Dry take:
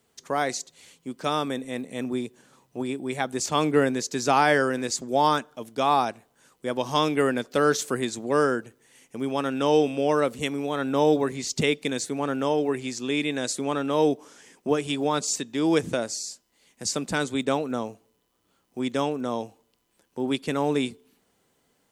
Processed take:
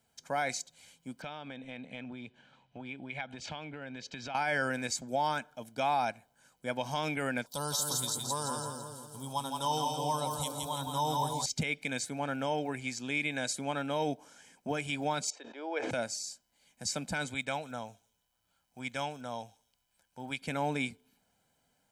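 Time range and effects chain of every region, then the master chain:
1.22–4.35 s: resonant low-pass 3.1 kHz, resonance Q 2.2 + compression 8:1, threshold -31 dBFS
7.46–11.46 s: FFT filter 140 Hz 0 dB, 220 Hz -8 dB, 690 Hz -8 dB, 1 kHz +8 dB, 1.5 kHz -18 dB, 2.4 kHz -20 dB, 3.6 kHz +7 dB, 6.6 kHz +6 dB, 10 kHz +14 dB + two-band feedback delay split 600 Hz, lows 238 ms, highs 167 ms, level -4 dB
15.30–15.91 s: inverse Chebyshev high-pass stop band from 190 Hz + tape spacing loss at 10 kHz 35 dB + decay stretcher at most 31 dB/s
17.34–20.42 s: peaking EQ 290 Hz -8 dB 2.3 oct + feedback echo behind a high-pass 148 ms, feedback 30%, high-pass 5.5 kHz, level -11 dB
whole clip: comb 1.3 ms, depth 64%; dynamic bell 2.2 kHz, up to +7 dB, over -44 dBFS, Q 2.4; peak limiter -14.5 dBFS; trim -7 dB

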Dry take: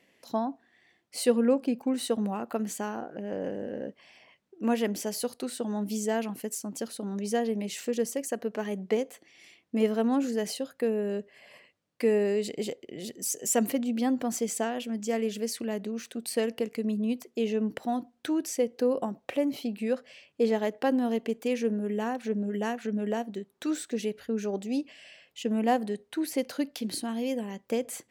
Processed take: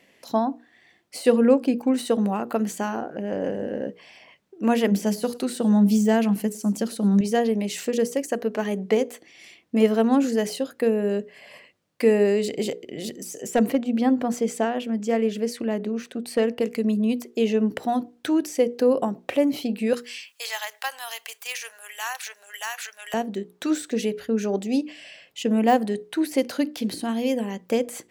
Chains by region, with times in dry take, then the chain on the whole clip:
4.91–7.21 s: peaking EQ 200 Hz +9.5 dB 0.32 oct + feedback delay 107 ms, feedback 28%, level -23 dB
13.42–16.61 s: treble shelf 3.6 kHz -11 dB + hard clipper -18.5 dBFS
19.93–23.14 s: high-pass 880 Hz 24 dB/octave + tilt EQ +4.5 dB/octave
whole clip: de-esser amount 80%; hum notches 60/120/180/240/300/360/420/480 Hz; trim +7 dB

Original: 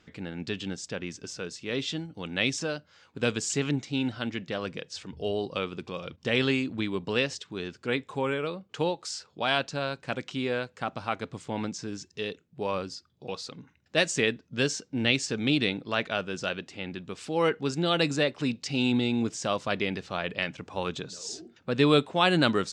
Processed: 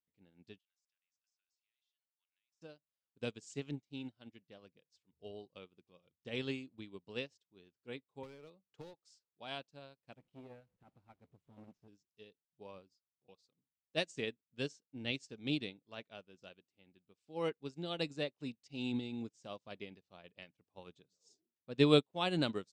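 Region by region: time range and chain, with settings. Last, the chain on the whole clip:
0.58–2.62 s: high-pass 1.3 kHz 24 dB/octave + compression, threshold -45 dBFS
8.23–8.94 s: overload inside the chain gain 27 dB + three bands compressed up and down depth 70%
10.16–11.88 s: one-bit delta coder 64 kbps, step -39.5 dBFS + tone controls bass +7 dB, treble -14 dB + transformer saturation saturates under 770 Hz
whole clip: peaking EQ 1.5 kHz -7 dB 1.1 oct; upward expansion 2.5:1, over -44 dBFS; trim -3 dB

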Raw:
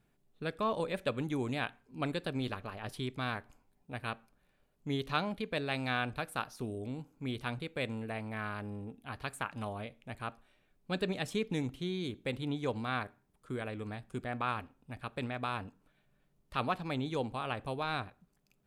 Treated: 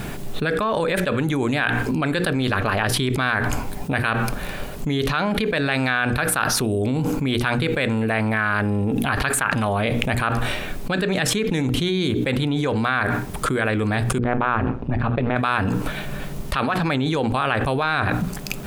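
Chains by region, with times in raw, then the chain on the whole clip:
14.18–15.36 s: AM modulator 120 Hz, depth 75% + tape spacing loss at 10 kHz 37 dB
whole clip: dynamic bell 1.6 kHz, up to +8 dB, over -53 dBFS, Q 2.2; hum notches 60/120/180/240/300/360/420/480 Hz; level flattener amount 100%; trim +3.5 dB

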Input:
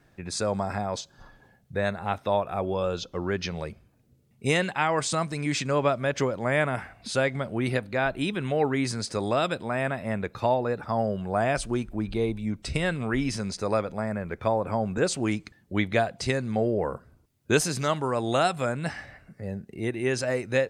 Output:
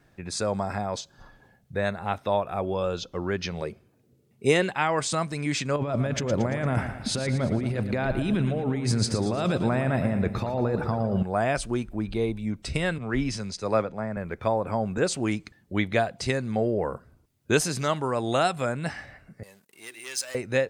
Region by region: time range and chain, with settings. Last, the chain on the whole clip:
3.61–4.70 s: high-pass 100 Hz + peaking EQ 400 Hz +8 dB 0.58 oct
5.76–11.23 s: bass shelf 390 Hz +10 dB + compressor with a negative ratio -26 dBFS + feedback delay 114 ms, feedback 52%, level -10 dB
12.98–14.17 s: block-companded coder 7-bit + low-pass 7.7 kHz + three bands expanded up and down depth 70%
19.43–20.35 s: hum notches 60/120/180/240/300/360/420 Hz + waveshaping leveller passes 2 + differentiator
whole clip: none

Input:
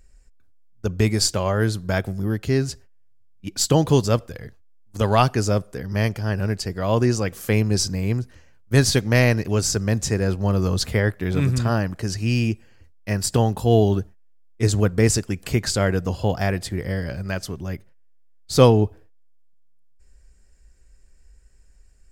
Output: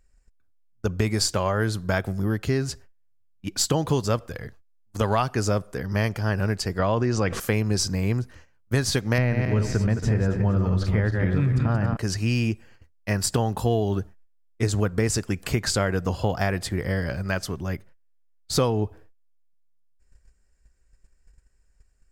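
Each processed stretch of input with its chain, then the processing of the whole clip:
6.79–7.40 s: distance through air 89 m + level flattener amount 50%
9.18–11.97 s: backward echo that repeats 138 ms, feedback 49%, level -5.5 dB + tone controls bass +7 dB, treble -14 dB + band-stop 1.1 kHz, Q 19
whole clip: gate -47 dBFS, range -10 dB; peaking EQ 1.2 kHz +4.5 dB 1.5 oct; compression, threshold -19 dBFS

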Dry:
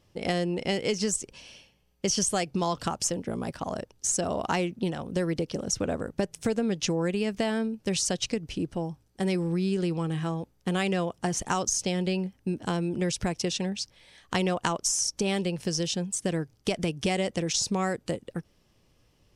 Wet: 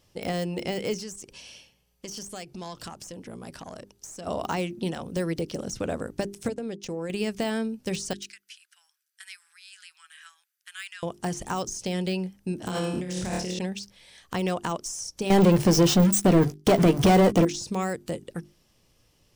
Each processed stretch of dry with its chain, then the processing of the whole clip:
0.98–4.27 s: compression 2.5:1, threshold -38 dBFS + valve stage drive 27 dB, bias 0.3
6.48–7.10 s: gate -30 dBFS, range -21 dB + peaking EQ 500 Hz +5.5 dB 1.6 oct + compression 5:1, threshold -30 dBFS
8.13–11.03 s: elliptic high-pass 1.5 kHz, stop band 70 dB + peaking EQ 4.8 kHz -9.5 dB 2.9 oct
12.58–13.59 s: high-pass 44 Hz + flutter echo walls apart 4.7 m, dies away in 0.57 s + compressor with a negative ratio -29 dBFS
15.30–17.45 s: hum notches 50/100/150 Hz + waveshaping leveller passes 5 + doubling 15 ms -11.5 dB
whole clip: hum notches 50/100/150/200/250/300/350/400 Hz; de-esser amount 100%; treble shelf 4.3 kHz +8 dB

